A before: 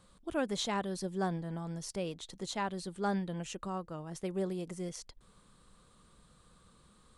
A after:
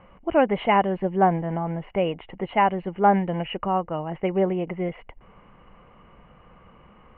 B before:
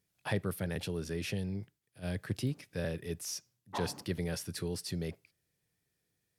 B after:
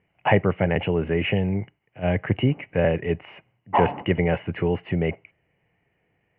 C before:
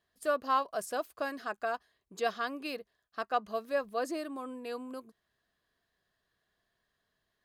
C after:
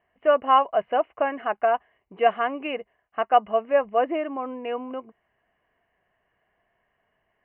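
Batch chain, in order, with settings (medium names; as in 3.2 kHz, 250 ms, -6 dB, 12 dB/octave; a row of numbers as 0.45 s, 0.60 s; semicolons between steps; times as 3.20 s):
rippled Chebyshev low-pass 3 kHz, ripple 9 dB; normalise loudness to -24 LUFS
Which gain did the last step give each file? +19.0 dB, +21.0 dB, +15.0 dB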